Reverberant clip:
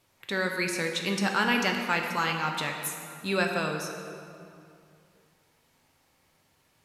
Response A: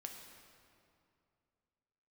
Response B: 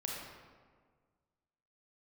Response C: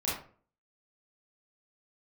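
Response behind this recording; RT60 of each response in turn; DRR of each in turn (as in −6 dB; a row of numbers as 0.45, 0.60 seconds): A; 2.5, 1.6, 0.45 seconds; 2.0, −3.0, −8.0 decibels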